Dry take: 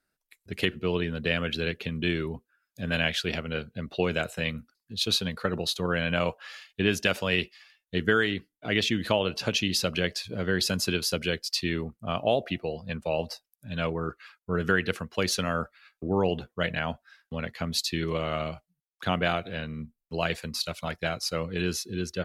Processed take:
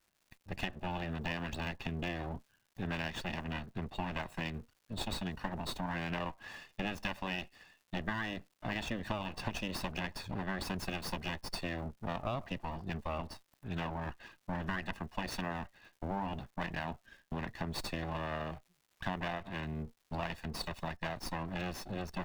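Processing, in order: comb filter that takes the minimum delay 1.1 ms; peaking EQ 9.5 kHz -11.5 dB 2.6 oct; compression 3:1, threshold -37 dBFS, peak gain reduction 12 dB; crackle 280 per s -59 dBFS; trim +1 dB

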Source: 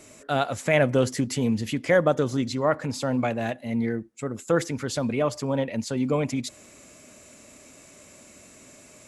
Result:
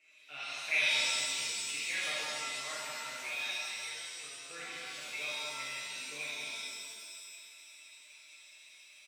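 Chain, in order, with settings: band-pass filter 2.5 kHz, Q 8.2; comb 6.5 ms, depth 83%; speakerphone echo 180 ms, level -6 dB; pitch-shifted reverb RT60 1.9 s, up +7 st, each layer -2 dB, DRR -7 dB; trim -5 dB

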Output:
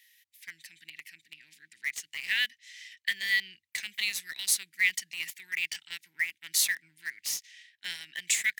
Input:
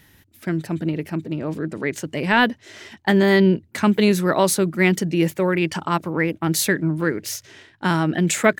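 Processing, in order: elliptic high-pass 1.9 kHz, stop band 40 dB; in parallel at -9 dB: bit crusher 5-bit; on the sum: trim -5 dB

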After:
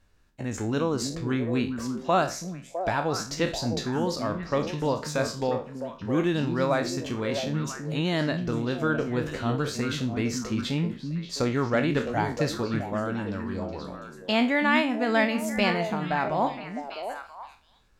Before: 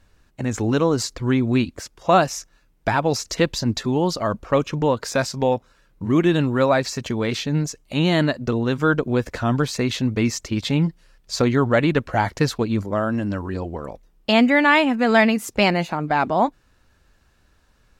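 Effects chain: spectral sustain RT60 0.33 s; repeats whose band climbs or falls 329 ms, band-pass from 200 Hz, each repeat 1.4 oct, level -2.5 dB; trim -8 dB

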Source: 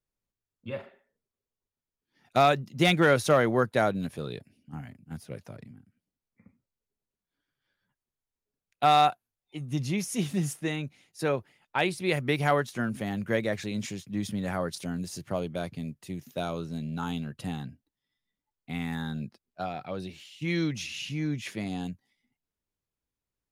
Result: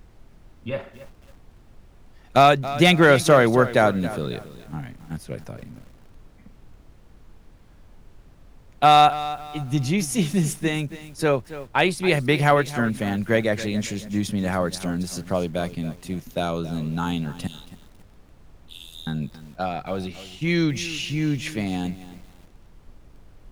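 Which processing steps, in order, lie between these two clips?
17.47–19.07 s: steep high-pass 2.9 kHz 96 dB/octave; added noise brown -54 dBFS; bit-crushed delay 275 ms, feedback 35%, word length 8-bit, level -14.5 dB; trim +7 dB

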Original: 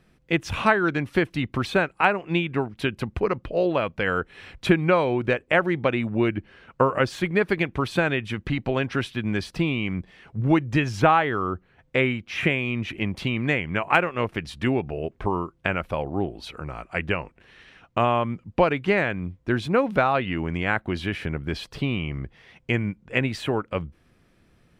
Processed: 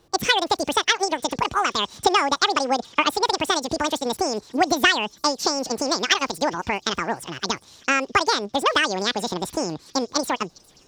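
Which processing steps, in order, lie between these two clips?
wide varispeed 2.28×; feedback echo behind a high-pass 406 ms, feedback 64%, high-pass 4.5 kHz, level -21 dB; trim +1.5 dB

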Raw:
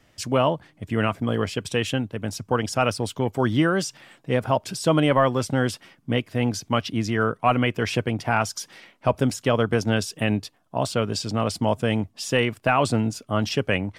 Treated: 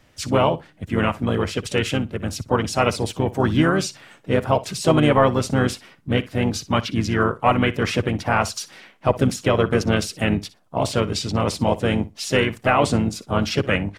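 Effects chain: harmony voices -12 st -17 dB, -4 st -6 dB, +3 st -16 dB; flutter echo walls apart 10.3 m, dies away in 0.2 s; trim +1.5 dB

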